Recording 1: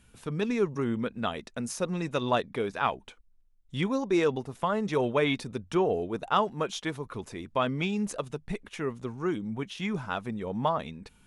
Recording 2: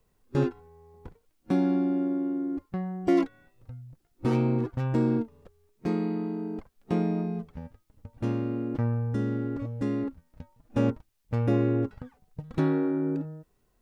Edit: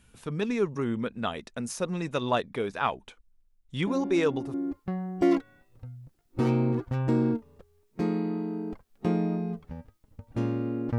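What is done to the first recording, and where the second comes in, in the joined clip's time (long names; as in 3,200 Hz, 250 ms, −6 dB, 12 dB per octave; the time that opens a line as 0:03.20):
recording 1
0:03.87: mix in recording 2 from 0:01.73 0.67 s −7.5 dB
0:04.54: continue with recording 2 from 0:02.40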